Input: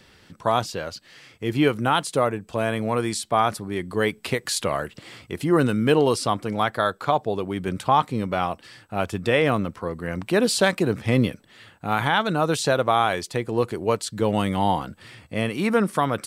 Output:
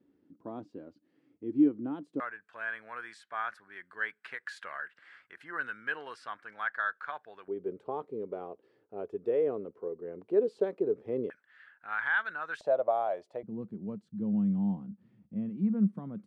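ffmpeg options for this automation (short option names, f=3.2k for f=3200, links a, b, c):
-af "asetnsamples=n=441:p=0,asendcmd='2.2 bandpass f 1600;7.48 bandpass f 420;11.3 bandpass f 1600;12.61 bandpass f 620;13.43 bandpass f 200',bandpass=f=290:t=q:w=6.9:csg=0"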